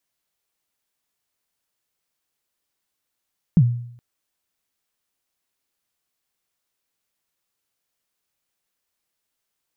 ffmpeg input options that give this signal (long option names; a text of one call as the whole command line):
ffmpeg -f lavfi -i "aevalsrc='0.422*pow(10,-3*t/0.66)*sin(2*PI*(190*0.056/log(120/190)*(exp(log(120/190)*min(t,0.056)/0.056)-1)+120*max(t-0.056,0)))':duration=0.42:sample_rate=44100" out.wav